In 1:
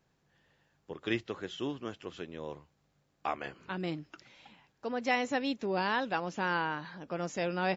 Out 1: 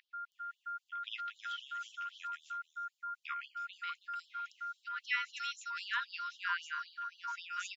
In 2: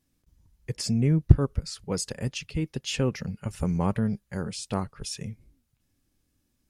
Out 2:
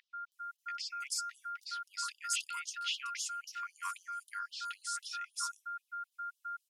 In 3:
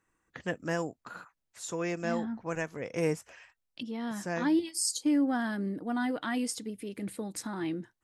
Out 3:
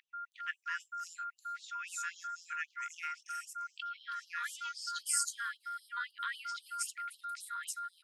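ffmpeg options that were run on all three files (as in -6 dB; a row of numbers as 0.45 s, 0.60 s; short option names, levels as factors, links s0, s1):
-filter_complex "[0:a]aeval=exprs='val(0)+0.0141*sin(2*PI*1400*n/s)':c=same,acrossover=split=990|4800[s0][s1][s2];[s2]adelay=320[s3];[s0]adelay=640[s4];[s4][s1][s3]amix=inputs=3:normalize=0,afftfilt=real='re*gte(b*sr/1024,920*pow(2900/920,0.5+0.5*sin(2*PI*3.8*pts/sr)))':imag='im*gte(b*sr/1024,920*pow(2900/920,0.5+0.5*sin(2*PI*3.8*pts/sr)))':win_size=1024:overlap=0.75"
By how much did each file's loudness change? -5.5 LU, -11.0 LU, -6.5 LU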